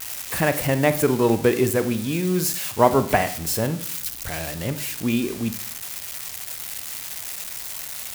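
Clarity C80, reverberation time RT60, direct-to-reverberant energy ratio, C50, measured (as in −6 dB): 17.0 dB, 0.55 s, 10.5 dB, 13.0 dB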